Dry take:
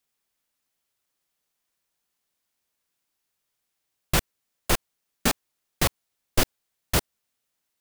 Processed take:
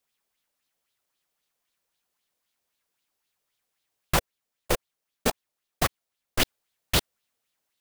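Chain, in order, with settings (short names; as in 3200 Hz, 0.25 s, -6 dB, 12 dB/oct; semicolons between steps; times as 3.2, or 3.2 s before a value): 4.16–6.4 level quantiser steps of 21 dB; LFO bell 3.8 Hz 470–3900 Hz +9 dB; gain -1.5 dB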